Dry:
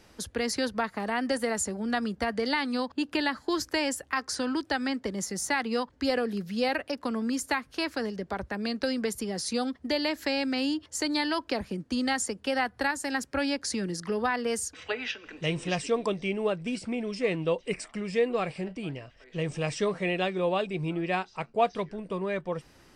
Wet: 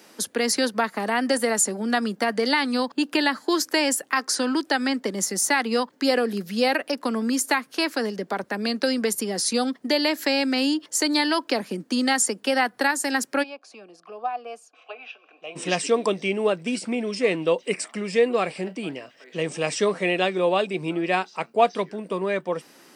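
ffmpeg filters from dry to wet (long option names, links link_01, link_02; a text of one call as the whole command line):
ffmpeg -i in.wav -filter_complex "[0:a]asplit=3[link_01][link_02][link_03];[link_01]afade=type=out:start_time=13.42:duration=0.02[link_04];[link_02]asplit=3[link_05][link_06][link_07];[link_05]bandpass=frequency=730:width_type=q:width=8,volume=0dB[link_08];[link_06]bandpass=frequency=1090:width_type=q:width=8,volume=-6dB[link_09];[link_07]bandpass=frequency=2440:width_type=q:width=8,volume=-9dB[link_10];[link_08][link_09][link_10]amix=inputs=3:normalize=0,afade=type=in:start_time=13.42:duration=0.02,afade=type=out:start_time=15.55:duration=0.02[link_11];[link_03]afade=type=in:start_time=15.55:duration=0.02[link_12];[link_04][link_11][link_12]amix=inputs=3:normalize=0,highpass=frequency=200:width=0.5412,highpass=frequency=200:width=1.3066,highshelf=frequency=9800:gain=11,volume=6dB" out.wav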